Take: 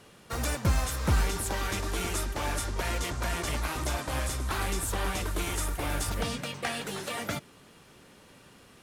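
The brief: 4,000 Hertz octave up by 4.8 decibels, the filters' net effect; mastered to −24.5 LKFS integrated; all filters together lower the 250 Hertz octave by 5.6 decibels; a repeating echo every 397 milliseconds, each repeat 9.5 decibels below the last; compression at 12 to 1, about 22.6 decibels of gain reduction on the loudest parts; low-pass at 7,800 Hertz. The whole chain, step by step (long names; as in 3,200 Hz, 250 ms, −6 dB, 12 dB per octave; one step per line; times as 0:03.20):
low-pass filter 7,800 Hz
parametric band 250 Hz −8.5 dB
parametric band 4,000 Hz +6.5 dB
downward compressor 12 to 1, threshold −44 dBFS
repeating echo 397 ms, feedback 33%, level −9.5 dB
level +23 dB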